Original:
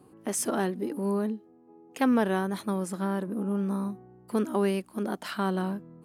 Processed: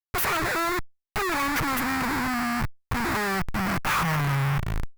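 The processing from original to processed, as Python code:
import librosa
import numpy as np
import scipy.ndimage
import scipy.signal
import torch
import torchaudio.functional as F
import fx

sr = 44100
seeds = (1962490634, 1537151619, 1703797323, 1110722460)

y = fx.speed_glide(x, sr, from_pct=184, to_pct=59)
y = fx.schmitt(y, sr, flips_db=-43.5)
y = fx.graphic_eq(y, sr, hz=(125, 250, 500, 1000, 2000, 4000, 8000), db=(4, -7, -10, 4, 6, -7, -6))
y = fx.power_curve(y, sr, exponent=0.5)
y = F.gain(torch.from_numpy(y), 1.5).numpy()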